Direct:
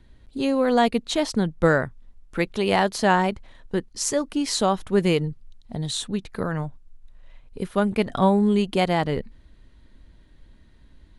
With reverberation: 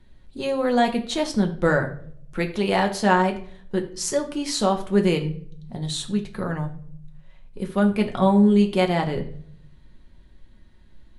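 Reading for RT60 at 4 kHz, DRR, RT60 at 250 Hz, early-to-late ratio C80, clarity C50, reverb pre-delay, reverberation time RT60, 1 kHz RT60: 0.40 s, 3.0 dB, 0.90 s, 16.0 dB, 12.0 dB, 5 ms, 0.55 s, 0.50 s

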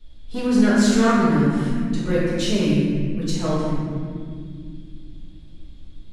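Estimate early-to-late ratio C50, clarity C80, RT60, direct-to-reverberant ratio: -3.0 dB, -0.5 dB, 2.3 s, -10.0 dB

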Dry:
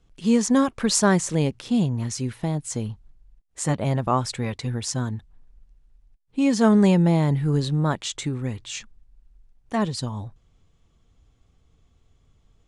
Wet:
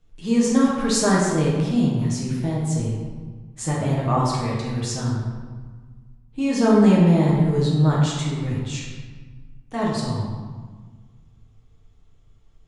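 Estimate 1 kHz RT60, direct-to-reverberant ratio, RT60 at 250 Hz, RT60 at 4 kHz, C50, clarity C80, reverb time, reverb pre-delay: 1.5 s, -5.5 dB, 2.0 s, 0.95 s, 0.0 dB, 2.5 dB, 1.5 s, 6 ms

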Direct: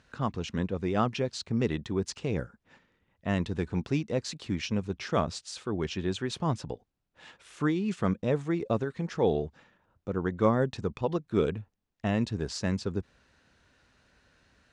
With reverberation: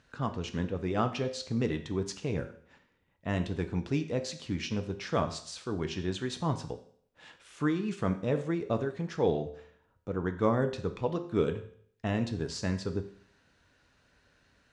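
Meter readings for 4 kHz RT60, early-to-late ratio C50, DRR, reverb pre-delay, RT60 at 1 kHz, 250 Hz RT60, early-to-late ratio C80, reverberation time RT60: 0.60 s, 12.0 dB, 7.0 dB, 5 ms, 0.60 s, 0.60 s, 15.0 dB, 0.60 s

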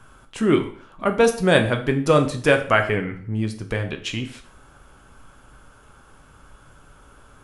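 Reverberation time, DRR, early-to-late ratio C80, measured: 0.50 s, 5.0 dB, 15.0 dB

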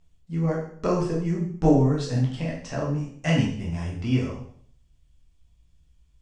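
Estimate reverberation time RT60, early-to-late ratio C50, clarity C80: 0.60 s, 4.5 dB, 8.5 dB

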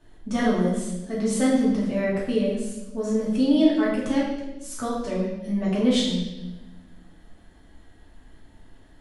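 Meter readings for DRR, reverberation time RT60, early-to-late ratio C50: -8.5 dB, 1.0 s, 1.5 dB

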